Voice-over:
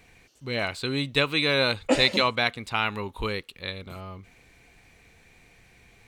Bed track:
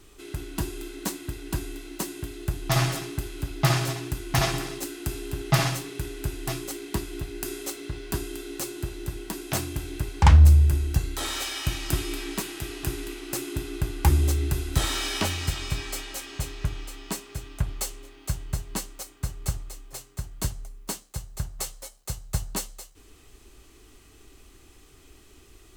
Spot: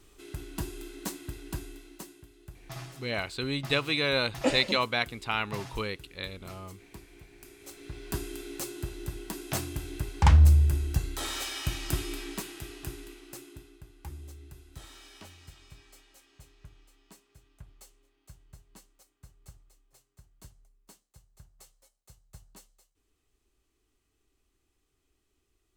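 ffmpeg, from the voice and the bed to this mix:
-filter_complex "[0:a]adelay=2550,volume=-4dB[a];[1:a]volume=9.5dB,afade=t=out:st=1.37:d=0.88:silence=0.211349,afade=t=in:st=7.58:d=0.58:silence=0.177828,afade=t=out:st=11.93:d=1.86:silence=0.112202[b];[a][b]amix=inputs=2:normalize=0"

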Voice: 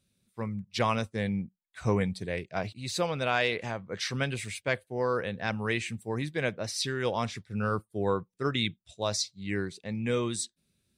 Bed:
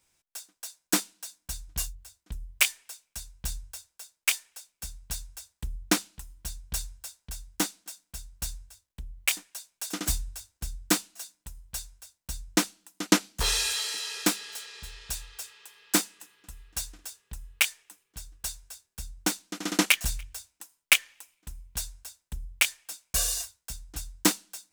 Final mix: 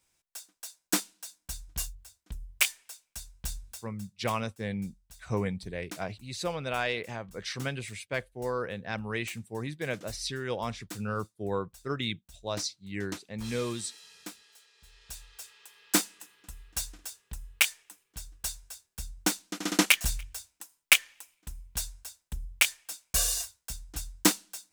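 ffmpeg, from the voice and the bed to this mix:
-filter_complex "[0:a]adelay=3450,volume=-3.5dB[a];[1:a]volume=16dB,afade=t=out:st=3.76:d=0.42:silence=0.158489,afade=t=in:st=14.77:d=1.35:silence=0.11885[b];[a][b]amix=inputs=2:normalize=0"

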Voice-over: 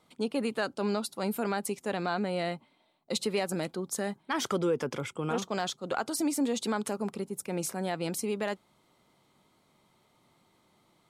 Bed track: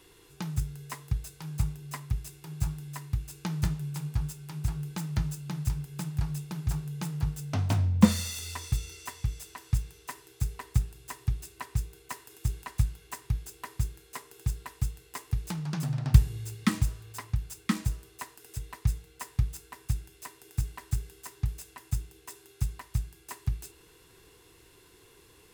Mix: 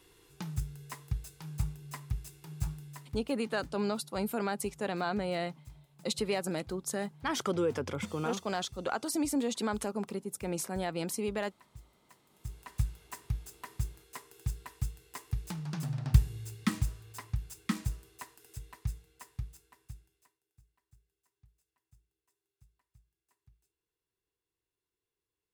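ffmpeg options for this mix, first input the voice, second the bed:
-filter_complex "[0:a]adelay=2950,volume=-2dB[a];[1:a]volume=13dB,afade=t=out:st=2.71:d=0.7:silence=0.133352,afade=t=in:st=12.29:d=0.56:silence=0.133352,afade=t=out:st=17.94:d=2.46:silence=0.0316228[b];[a][b]amix=inputs=2:normalize=0"

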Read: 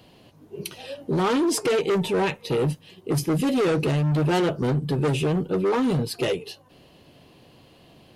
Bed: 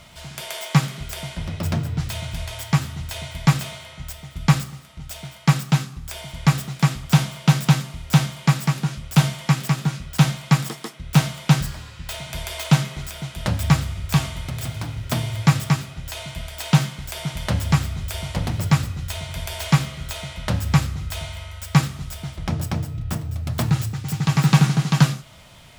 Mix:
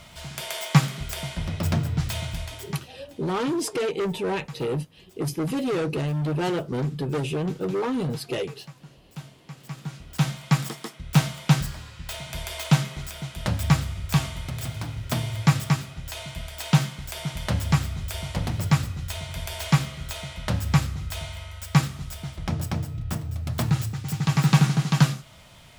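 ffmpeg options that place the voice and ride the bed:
-filter_complex "[0:a]adelay=2100,volume=-4dB[a];[1:a]volume=20dB,afade=t=out:st=2.22:d=0.67:silence=0.0707946,afade=t=in:st=9.55:d=1.13:silence=0.0944061[b];[a][b]amix=inputs=2:normalize=0"

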